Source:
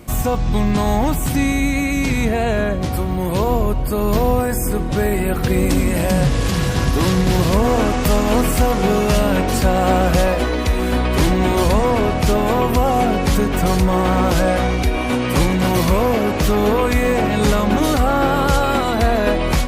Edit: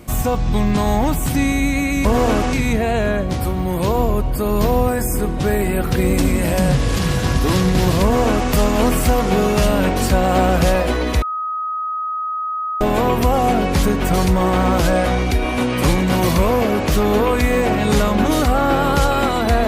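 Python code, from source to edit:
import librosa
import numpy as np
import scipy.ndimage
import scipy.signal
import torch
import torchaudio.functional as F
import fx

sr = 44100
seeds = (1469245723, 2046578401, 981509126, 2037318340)

y = fx.edit(x, sr, fx.duplicate(start_s=7.55, length_s=0.48, to_s=2.05),
    fx.bleep(start_s=10.74, length_s=1.59, hz=1260.0, db=-20.5), tone=tone)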